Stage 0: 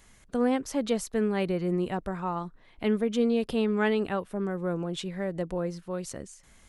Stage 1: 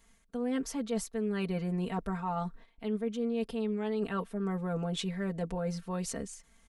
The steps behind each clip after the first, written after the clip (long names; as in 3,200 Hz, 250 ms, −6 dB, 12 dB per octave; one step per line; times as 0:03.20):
noise gate −53 dBFS, range −10 dB
comb filter 4.4 ms, depth 86%
reversed playback
downward compressor 6 to 1, threshold −30 dBFS, peak gain reduction 14 dB
reversed playback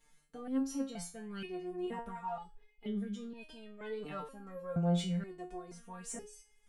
in parallel at −10 dB: soft clipping −35.5 dBFS, distortion −9 dB
on the sum: step-sequenced resonator 2.1 Hz 150–420 Hz
level +5.5 dB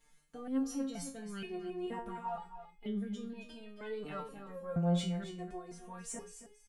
single-tap delay 272 ms −11.5 dB